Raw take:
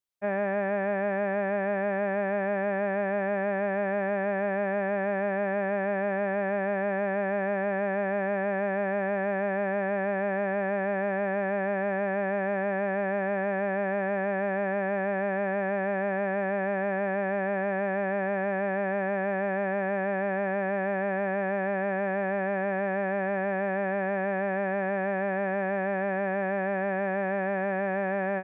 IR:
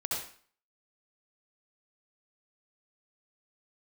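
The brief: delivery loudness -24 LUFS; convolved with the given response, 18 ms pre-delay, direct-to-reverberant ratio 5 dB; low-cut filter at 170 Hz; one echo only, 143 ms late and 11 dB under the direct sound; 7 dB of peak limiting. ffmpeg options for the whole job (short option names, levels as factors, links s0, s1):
-filter_complex "[0:a]highpass=170,alimiter=level_in=1.19:limit=0.0631:level=0:latency=1,volume=0.841,aecho=1:1:143:0.282,asplit=2[s0][s1];[1:a]atrim=start_sample=2205,adelay=18[s2];[s1][s2]afir=irnorm=-1:irlink=0,volume=0.316[s3];[s0][s3]amix=inputs=2:normalize=0,volume=2.99"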